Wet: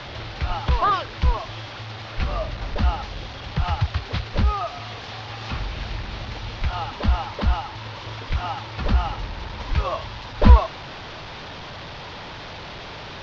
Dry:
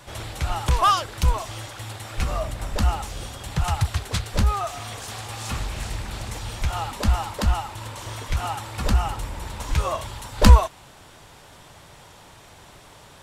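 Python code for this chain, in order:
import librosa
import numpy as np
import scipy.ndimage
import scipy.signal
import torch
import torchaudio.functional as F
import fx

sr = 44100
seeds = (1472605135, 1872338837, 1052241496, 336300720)

y = fx.delta_mod(x, sr, bps=32000, step_db=-29.5)
y = scipy.signal.sosfilt(scipy.signal.butter(4, 4600.0, 'lowpass', fs=sr, output='sos'), y)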